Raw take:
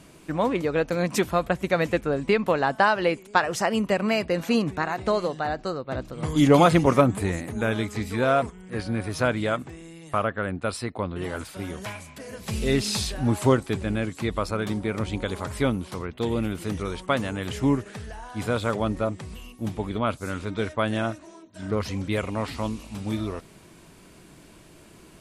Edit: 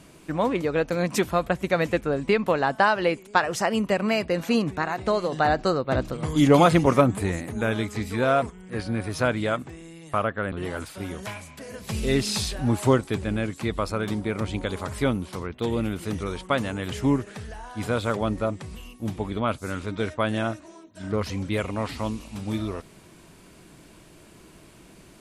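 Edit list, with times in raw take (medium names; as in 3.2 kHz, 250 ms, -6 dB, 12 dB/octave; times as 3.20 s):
5.32–6.17 s: gain +6.5 dB
10.52–11.11 s: delete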